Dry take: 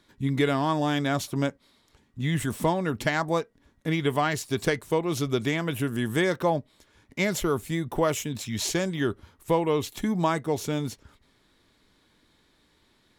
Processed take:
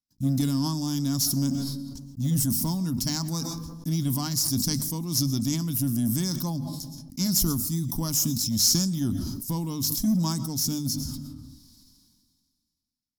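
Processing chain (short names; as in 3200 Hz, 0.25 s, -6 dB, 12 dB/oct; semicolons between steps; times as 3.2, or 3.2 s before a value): notches 50/100/150/200/250 Hz; gate -55 dBFS, range -34 dB; EQ curve 170 Hz 0 dB, 260 Hz +3 dB, 420 Hz -26 dB, 640 Hz -23 dB, 970 Hz -14 dB, 2000 Hz -26 dB, 3600 Hz -10 dB, 5200 Hz +13 dB, 7700 Hz +3 dB, 14000 Hz +14 dB; in parallel at -7.5 dB: hard clip -26 dBFS, distortion -11 dB; on the sum: digital reverb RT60 0.65 s, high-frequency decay 0.45×, pre-delay 85 ms, DRR 17.5 dB; sustainer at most 30 dB/s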